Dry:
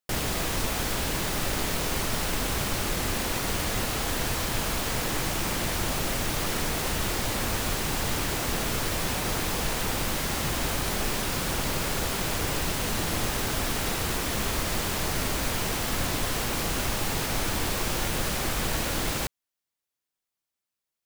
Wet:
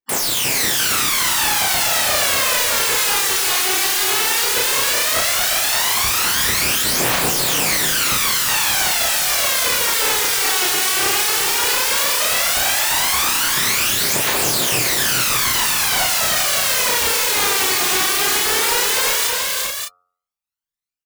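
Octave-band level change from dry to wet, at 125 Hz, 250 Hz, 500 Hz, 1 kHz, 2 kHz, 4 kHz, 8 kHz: −3.5, 0.0, +6.5, +10.0, +12.5, +14.0, +14.5 decibels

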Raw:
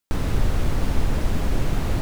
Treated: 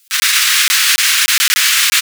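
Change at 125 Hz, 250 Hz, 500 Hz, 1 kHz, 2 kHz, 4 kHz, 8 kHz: below −35 dB, below −25 dB, below −20 dB, +10.0 dB, +24.5 dB, +29.0 dB, +30.0 dB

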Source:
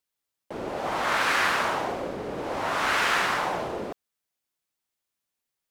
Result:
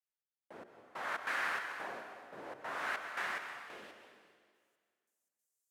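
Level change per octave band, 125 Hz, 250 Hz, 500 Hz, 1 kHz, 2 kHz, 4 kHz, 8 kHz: −24.0, −20.5, −17.5, −15.5, −12.0, −18.0, −18.5 decibels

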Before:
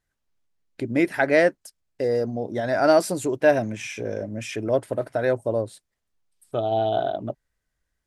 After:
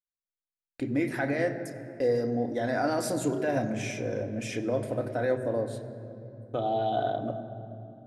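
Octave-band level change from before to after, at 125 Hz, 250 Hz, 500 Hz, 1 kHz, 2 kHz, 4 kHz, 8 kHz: −1.5, −3.5, −7.0, −4.5, −8.0, −6.0, −3.5 decibels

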